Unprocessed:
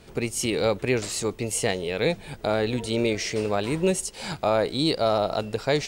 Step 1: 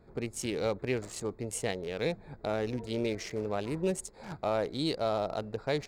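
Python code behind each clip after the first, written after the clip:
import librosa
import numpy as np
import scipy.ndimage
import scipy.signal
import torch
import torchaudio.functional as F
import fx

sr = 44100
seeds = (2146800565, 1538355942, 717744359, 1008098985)

y = fx.wiener(x, sr, points=15)
y = y * 10.0 ** (-7.5 / 20.0)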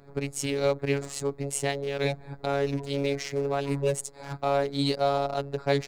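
y = fx.robotise(x, sr, hz=140.0)
y = y * 10.0 ** (7.5 / 20.0)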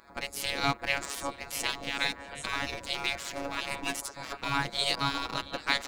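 y = fx.echo_stepped(x, sr, ms=169, hz=150.0, octaves=1.4, feedback_pct=70, wet_db=-8)
y = fx.spec_gate(y, sr, threshold_db=-15, keep='weak')
y = y * 10.0 ** (7.0 / 20.0)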